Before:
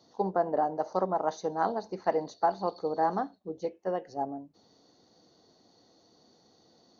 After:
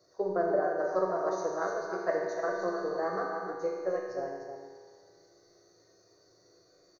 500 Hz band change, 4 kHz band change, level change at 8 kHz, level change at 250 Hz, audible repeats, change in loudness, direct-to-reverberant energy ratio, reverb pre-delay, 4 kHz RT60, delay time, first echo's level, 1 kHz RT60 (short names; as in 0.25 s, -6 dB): +1.0 dB, -3.0 dB, n/a, -2.0 dB, 1, -1.0 dB, -3.0 dB, 3 ms, 2.0 s, 0.303 s, -7.5 dB, 2.0 s